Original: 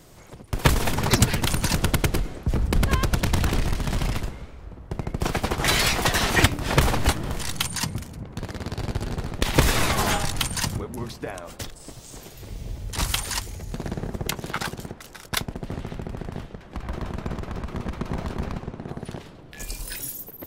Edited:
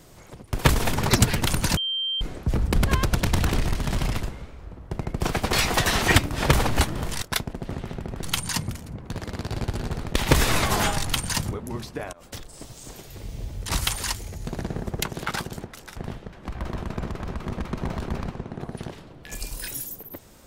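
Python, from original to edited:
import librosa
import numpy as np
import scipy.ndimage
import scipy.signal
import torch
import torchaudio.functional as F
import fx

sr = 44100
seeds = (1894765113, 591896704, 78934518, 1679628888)

y = fx.edit(x, sr, fx.bleep(start_s=1.77, length_s=0.44, hz=3150.0, db=-24.0),
    fx.cut(start_s=5.53, length_s=0.28),
    fx.fade_in_from(start_s=11.4, length_s=0.5, curve='qsin', floor_db=-18.5),
    fx.move(start_s=15.23, length_s=1.01, to_s=7.5), tone=tone)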